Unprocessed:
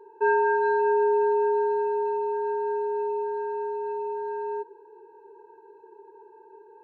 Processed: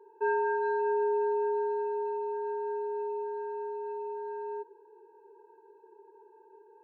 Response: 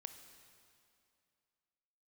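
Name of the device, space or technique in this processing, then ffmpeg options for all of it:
filter by subtraction: -filter_complex "[0:a]asplit=2[a][b];[b]lowpass=370,volume=-1[c];[a][c]amix=inputs=2:normalize=0,volume=-8dB"

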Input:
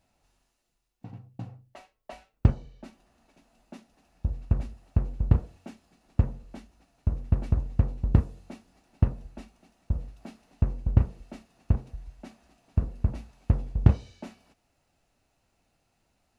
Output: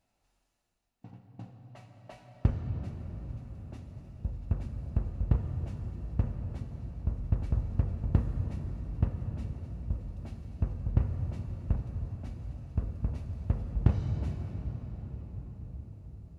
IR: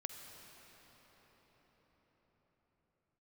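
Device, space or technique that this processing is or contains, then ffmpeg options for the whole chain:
cathedral: -filter_complex "[1:a]atrim=start_sample=2205[a];[0:a][a]afir=irnorm=-1:irlink=0,volume=-2.5dB"

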